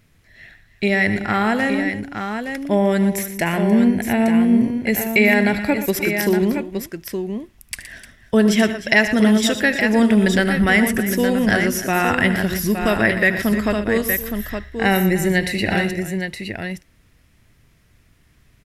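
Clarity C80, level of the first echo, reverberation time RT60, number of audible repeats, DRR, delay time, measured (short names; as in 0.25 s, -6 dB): none, -15.5 dB, none, 4, none, 76 ms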